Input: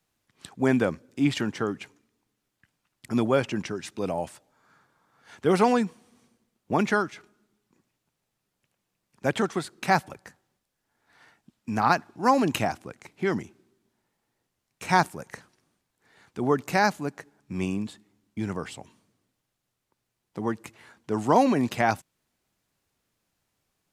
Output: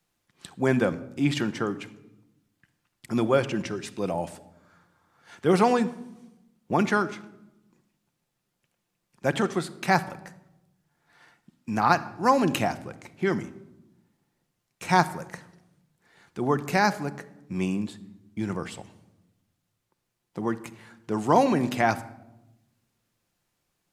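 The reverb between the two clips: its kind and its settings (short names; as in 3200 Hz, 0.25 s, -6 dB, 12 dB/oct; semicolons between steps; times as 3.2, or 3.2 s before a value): shoebox room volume 3500 m³, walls furnished, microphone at 0.86 m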